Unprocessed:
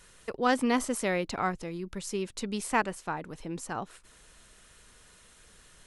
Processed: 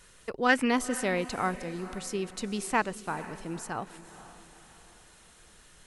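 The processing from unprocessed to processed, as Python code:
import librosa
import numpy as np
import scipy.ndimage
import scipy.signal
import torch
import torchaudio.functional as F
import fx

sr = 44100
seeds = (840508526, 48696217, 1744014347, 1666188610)

y = fx.spec_box(x, sr, start_s=0.49, length_s=0.21, low_hz=1300.0, high_hz=3000.0, gain_db=9)
y = fx.echo_diffused(y, sr, ms=473, feedback_pct=46, wet_db=-15.0)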